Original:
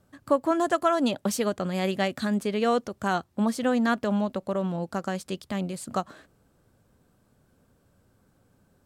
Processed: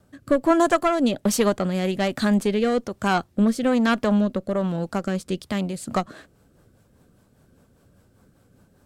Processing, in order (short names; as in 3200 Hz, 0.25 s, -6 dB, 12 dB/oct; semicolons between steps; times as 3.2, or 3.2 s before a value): one diode to ground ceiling -19.5 dBFS; wow and flutter 26 cents; rotary speaker horn 1.2 Hz, later 5 Hz, at 5.37; gain +8 dB